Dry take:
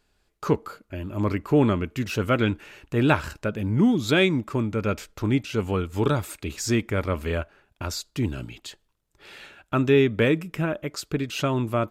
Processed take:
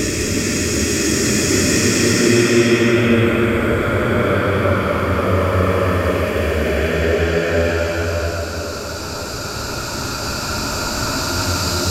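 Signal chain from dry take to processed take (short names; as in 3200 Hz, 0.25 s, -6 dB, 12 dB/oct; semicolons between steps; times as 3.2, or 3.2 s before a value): spectral swells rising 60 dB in 2.21 s; Paulstretch 8×, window 0.25 s, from 6.39; tape echo 0.531 s, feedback 79%, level -8.5 dB, low-pass 1100 Hz; gain +5.5 dB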